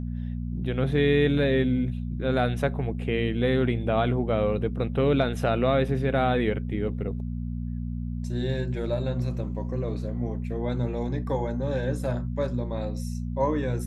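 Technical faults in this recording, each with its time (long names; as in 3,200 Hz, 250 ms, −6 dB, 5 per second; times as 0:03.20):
mains hum 60 Hz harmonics 4 −31 dBFS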